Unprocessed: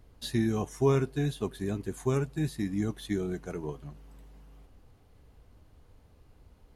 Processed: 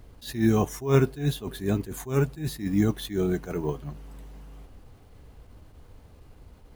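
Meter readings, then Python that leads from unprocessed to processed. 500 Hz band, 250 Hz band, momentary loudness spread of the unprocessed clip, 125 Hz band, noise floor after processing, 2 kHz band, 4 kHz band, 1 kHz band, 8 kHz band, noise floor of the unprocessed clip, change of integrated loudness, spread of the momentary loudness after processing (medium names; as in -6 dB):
+3.5 dB, +5.0 dB, 12 LU, +4.5 dB, -53 dBFS, +4.5 dB, +4.0 dB, +4.0 dB, +5.0 dB, -60 dBFS, +4.5 dB, 14 LU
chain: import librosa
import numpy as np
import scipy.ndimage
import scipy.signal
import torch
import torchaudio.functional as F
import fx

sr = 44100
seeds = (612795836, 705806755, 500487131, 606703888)

y = np.repeat(x[::2], 2)[:len(x)]
y = fx.attack_slew(y, sr, db_per_s=160.0)
y = F.gain(torch.from_numpy(y), 8.0).numpy()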